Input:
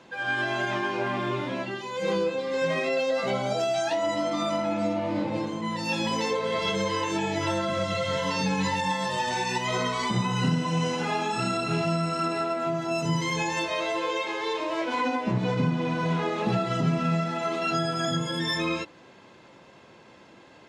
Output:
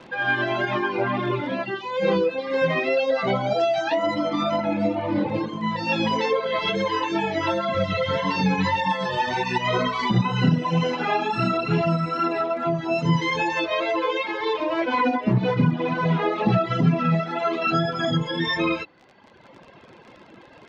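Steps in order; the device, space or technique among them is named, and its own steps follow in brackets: 6.40–7.75 s: high-pass 220 Hz 6 dB/octave; reverb removal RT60 1.3 s; lo-fi chain (low-pass 5.1 kHz 12 dB/octave; wow and flutter 20 cents; crackle 45 per s -40 dBFS); distance through air 130 m; trim +7.5 dB

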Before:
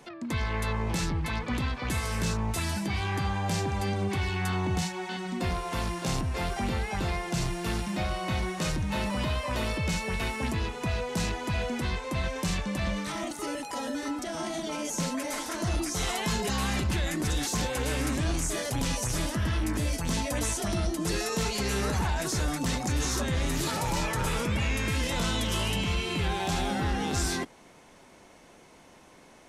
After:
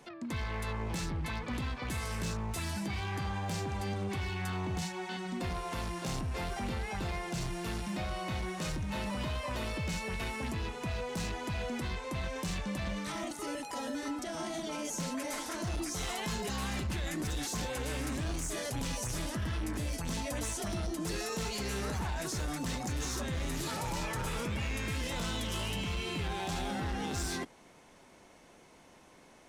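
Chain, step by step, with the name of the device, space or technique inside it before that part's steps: limiter into clipper (peak limiter -23.5 dBFS, peak gain reduction 3 dB; hard clipper -26.5 dBFS, distortion -20 dB); trim -4 dB

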